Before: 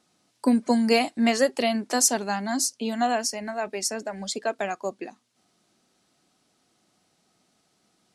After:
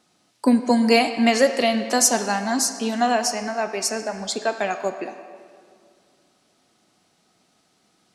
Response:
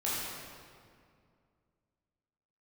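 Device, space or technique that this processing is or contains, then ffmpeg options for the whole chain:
filtered reverb send: -filter_complex "[0:a]asplit=2[link_01][link_02];[link_02]highpass=frequency=480:poles=1,lowpass=6200[link_03];[1:a]atrim=start_sample=2205[link_04];[link_03][link_04]afir=irnorm=-1:irlink=0,volume=-12dB[link_05];[link_01][link_05]amix=inputs=2:normalize=0,volume=3dB"

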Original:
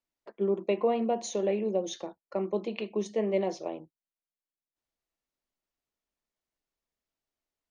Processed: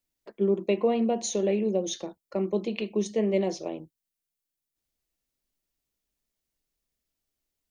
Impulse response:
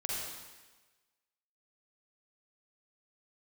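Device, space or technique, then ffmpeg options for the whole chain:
smiley-face EQ: -af "lowshelf=frequency=120:gain=5.5,equalizer=frequency=970:width_type=o:width=2:gain=-7,highshelf=frequency=8000:gain=6,volume=5dB"

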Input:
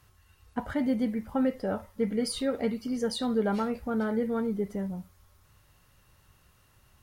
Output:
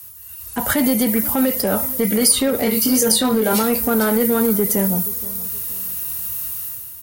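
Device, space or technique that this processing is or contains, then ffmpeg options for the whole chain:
FM broadcast chain: -filter_complex "[0:a]asettb=1/sr,asplit=3[link_01][link_02][link_03];[link_01]atrim=end=2.584[link_04];[link_02]atrim=start=2.58:end=3.63,asetpts=PTS-STARTPTS,afade=type=in:duration=0.004:curve=qsin,afade=type=out:start_time=1.046:duration=0.004:curve=qsin,asplit=2[link_05][link_06];[link_06]adelay=23,volume=-3.5dB[link_07];[link_05][link_07]amix=inputs=2:normalize=0,atrim=end_sample=46305[link_08];[link_03]atrim=start=3.626[link_09];[link_04][link_08]acrossfade=duration=0.004:curve1=hsin:curve2=qsin[link_10];[link_10][link_09]acrossfade=duration=0.004:curve1=qsin:curve2=hsin,highpass=51,dynaudnorm=framelen=190:gausssize=5:maxgain=12dB,acrossover=split=150|310|2600[link_11][link_12][link_13][link_14];[link_11]acompressor=threshold=-38dB:ratio=4[link_15];[link_12]acompressor=threshold=-27dB:ratio=4[link_16];[link_13]acompressor=threshold=-21dB:ratio=4[link_17];[link_14]acompressor=threshold=-40dB:ratio=4[link_18];[link_15][link_16][link_17][link_18]amix=inputs=4:normalize=0,aemphasis=mode=production:type=50fm,alimiter=limit=-15.5dB:level=0:latency=1:release=23,asoftclip=type=hard:threshold=-18dB,lowpass=frequency=15000:width=0.5412,lowpass=frequency=15000:width=1.3066,aemphasis=mode=production:type=50fm,asplit=2[link_19][link_20];[link_20]adelay=474,lowpass=frequency=2000:poles=1,volume=-18.5dB,asplit=2[link_21][link_22];[link_22]adelay=474,lowpass=frequency=2000:poles=1,volume=0.35,asplit=2[link_23][link_24];[link_24]adelay=474,lowpass=frequency=2000:poles=1,volume=0.35[link_25];[link_19][link_21][link_23][link_25]amix=inputs=4:normalize=0,volume=6dB"

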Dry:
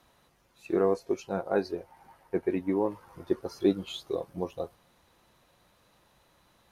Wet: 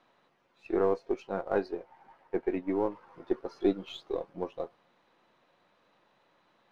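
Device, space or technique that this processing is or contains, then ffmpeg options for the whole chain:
crystal radio: -af "highpass=220,lowpass=3200,aeval=exprs='if(lt(val(0),0),0.708*val(0),val(0))':channel_layout=same"

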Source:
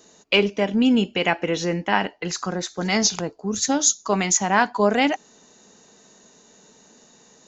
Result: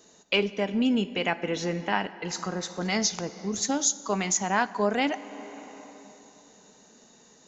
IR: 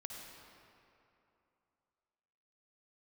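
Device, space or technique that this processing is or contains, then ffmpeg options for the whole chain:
ducked reverb: -filter_complex "[0:a]asplit=3[link_01][link_02][link_03];[1:a]atrim=start_sample=2205[link_04];[link_02][link_04]afir=irnorm=-1:irlink=0[link_05];[link_03]apad=whole_len=329523[link_06];[link_05][link_06]sidechaincompress=threshold=-24dB:ratio=8:attack=16:release=770,volume=0dB[link_07];[link_01][link_07]amix=inputs=2:normalize=0,volume=-7.5dB"

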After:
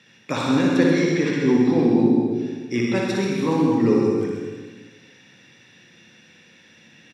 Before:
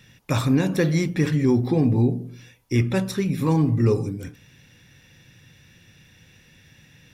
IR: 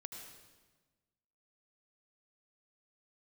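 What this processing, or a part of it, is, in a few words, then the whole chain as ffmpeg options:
supermarket ceiling speaker: -filter_complex "[0:a]asettb=1/sr,asplit=3[link_01][link_02][link_03];[link_01]atrim=end=0.774[link_04];[link_02]atrim=start=0.77:end=1.4,asetpts=PTS-STARTPTS,afade=type=in:duration=0.004:curve=qsin,afade=type=out:start_time=0.626:duration=0.004:curve=qsin,lowpass=7900[link_05];[link_03]atrim=start=1.396[link_06];[link_04][link_05]acrossfade=duration=0.004:curve1=hsin:curve2=qsin[link_07];[link_07][link_06]acrossfade=duration=0.004:curve1=qsin:curve2=hsin,highpass=270,lowpass=5800,equalizer=frequency=220:width_type=o:width=0.63:gain=4[link_08];[1:a]atrim=start_sample=2205[link_09];[link_08][link_09]afir=irnorm=-1:irlink=0,aecho=1:1:60|132|218.4|322.1|446.5:0.631|0.398|0.251|0.158|0.1,volume=6dB"

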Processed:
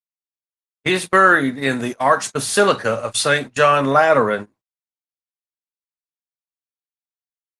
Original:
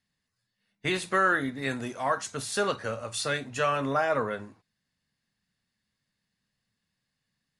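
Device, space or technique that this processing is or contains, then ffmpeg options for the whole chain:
video call: -filter_complex "[0:a]agate=range=-33dB:threshold=-46dB:ratio=3:detection=peak,asplit=3[link_01][link_02][link_03];[link_01]afade=type=out:start_time=2.97:duration=0.02[link_04];[link_02]equalizer=frequency=250:width_type=o:width=0.99:gain=-2.5,afade=type=in:start_time=2.97:duration=0.02,afade=type=out:start_time=4.08:duration=0.02[link_05];[link_03]afade=type=in:start_time=4.08:duration=0.02[link_06];[link_04][link_05][link_06]amix=inputs=3:normalize=0,highpass=130,dynaudnorm=framelen=200:gausssize=7:maxgain=14dB,agate=range=-24dB:threshold=-25dB:ratio=16:detection=peak,volume=1dB" -ar 48000 -c:a libopus -b:a 24k

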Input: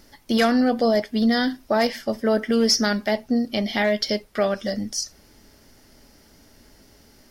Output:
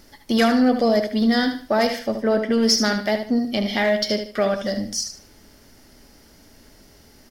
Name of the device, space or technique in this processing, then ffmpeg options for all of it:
parallel distortion: -filter_complex "[0:a]asettb=1/sr,asplit=3[link_01][link_02][link_03];[link_01]atrim=end=1.994[link_04];[link_02]atrim=start=1.99:end=2.63,asetpts=PTS-STARTPTS,afade=type=in:duration=0.004:curve=qsin,afade=type=out:start_time=0.636:duration=0.004:curve=qsin,highshelf=frequency=5300:gain=-8.5[link_05];[link_03]atrim=start=2.626[link_06];[link_04][link_05]acrossfade=duration=0.004:curve1=hsin:curve2=qsin[link_07];[link_07][link_06]acrossfade=duration=0.004:curve1=qsin:curve2=hsin,aecho=1:1:75|150|225:0.355|0.103|0.0298,asplit=2[link_08][link_09];[link_09]asoftclip=type=hard:threshold=-25.5dB,volume=-13dB[link_10];[link_08][link_10]amix=inputs=2:normalize=0"

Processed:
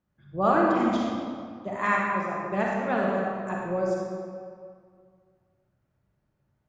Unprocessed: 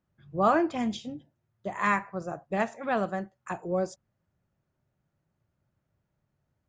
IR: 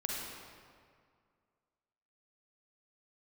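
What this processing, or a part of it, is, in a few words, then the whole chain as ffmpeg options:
swimming-pool hall: -filter_complex "[0:a]asplit=3[link_01][link_02][link_03];[link_01]afade=type=out:start_time=1.85:duration=0.02[link_04];[link_02]highpass=170,afade=type=in:start_time=1.85:duration=0.02,afade=type=out:start_time=2.33:duration=0.02[link_05];[link_03]afade=type=in:start_time=2.33:duration=0.02[link_06];[link_04][link_05][link_06]amix=inputs=3:normalize=0[link_07];[1:a]atrim=start_sample=2205[link_08];[link_07][link_08]afir=irnorm=-1:irlink=0,highshelf=frequency=5200:gain=-6"

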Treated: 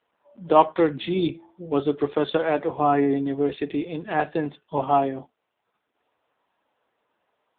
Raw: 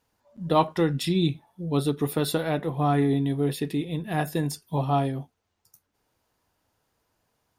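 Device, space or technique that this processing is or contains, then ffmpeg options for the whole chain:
telephone: -filter_complex "[0:a]asplit=3[link_01][link_02][link_03];[link_01]afade=type=out:start_time=0.96:duration=0.02[link_04];[link_02]bandreject=frequency=331.5:width_type=h:width=4,bandreject=frequency=663:width_type=h:width=4,bandreject=frequency=994.5:width_type=h:width=4,bandreject=frequency=1326:width_type=h:width=4,bandreject=frequency=1657.5:width_type=h:width=4,bandreject=frequency=1989:width_type=h:width=4,bandreject=frequency=2320.5:width_type=h:width=4,afade=type=in:start_time=0.96:duration=0.02,afade=type=out:start_time=1.78:duration=0.02[link_05];[link_03]afade=type=in:start_time=1.78:duration=0.02[link_06];[link_04][link_05][link_06]amix=inputs=3:normalize=0,highpass=340,lowpass=3600,volume=6.5dB" -ar 8000 -c:a libopencore_amrnb -b:a 6700

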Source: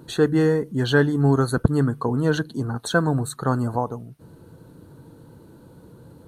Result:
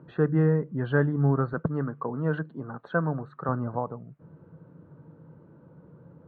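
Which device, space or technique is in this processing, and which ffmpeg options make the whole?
bass cabinet: -filter_complex "[0:a]highpass=74,equalizer=frequency=160:width_type=q:width=4:gain=10,equalizer=frequency=570:width_type=q:width=4:gain=6,equalizer=frequency=1200:width_type=q:width=4:gain=5,lowpass=frequency=2200:width=0.5412,lowpass=frequency=2200:width=1.3066,asettb=1/sr,asplit=3[link_01][link_02][link_03];[link_01]atrim=end=1.534[link_04];[link_02]atrim=start=1.53:end=3.49,asetpts=PTS-STARTPTS,afade=type=in:duration=0.004:curve=qsin,afade=type=out:start_time=1.956:duration=0.004:curve=qsin,highpass=frequency=250:poles=1[link_05];[link_03]atrim=start=3.486[link_06];[link_04][link_05]acrossfade=duration=0.004:curve1=hsin:curve2=qsin[link_07];[link_07][link_06]acrossfade=duration=0.004:curve1=qsin:curve2=hsin,volume=-8dB"

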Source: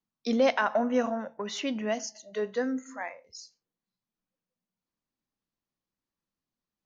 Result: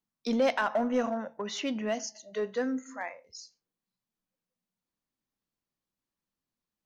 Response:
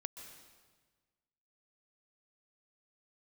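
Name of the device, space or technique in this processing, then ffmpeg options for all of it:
parallel distortion: -filter_complex "[0:a]asplit=2[link_01][link_02];[link_02]asoftclip=type=hard:threshold=-26dB,volume=-5dB[link_03];[link_01][link_03]amix=inputs=2:normalize=0,volume=-4.5dB"

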